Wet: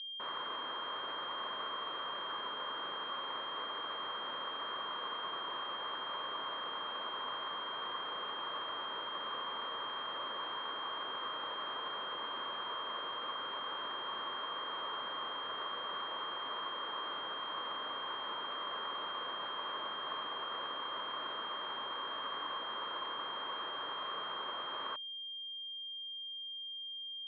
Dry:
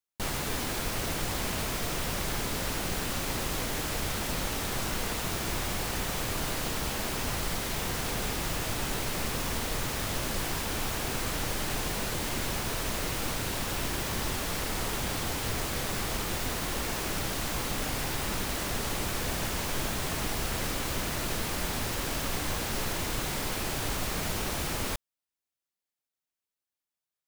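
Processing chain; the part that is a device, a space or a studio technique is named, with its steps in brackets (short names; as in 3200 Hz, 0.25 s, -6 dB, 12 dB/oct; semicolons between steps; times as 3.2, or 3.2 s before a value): toy sound module (decimation joined by straight lines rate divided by 4×; pulse-width modulation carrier 3200 Hz; speaker cabinet 740–4400 Hz, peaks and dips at 750 Hz -9 dB, 1100 Hz +7 dB, 2300 Hz -5 dB, 4000 Hz +6 dB); gain -2 dB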